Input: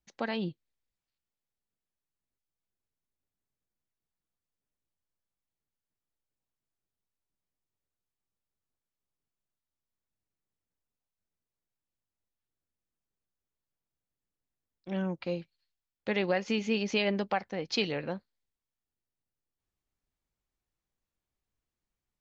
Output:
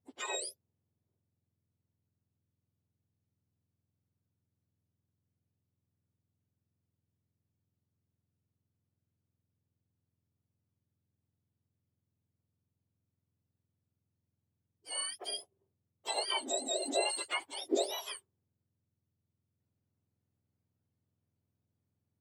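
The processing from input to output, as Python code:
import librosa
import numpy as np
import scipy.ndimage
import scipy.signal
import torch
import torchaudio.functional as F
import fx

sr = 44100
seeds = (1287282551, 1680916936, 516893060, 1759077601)

y = fx.octave_mirror(x, sr, pivot_hz=1300.0)
y = y * 10.0 ** (-1.0 / 20.0)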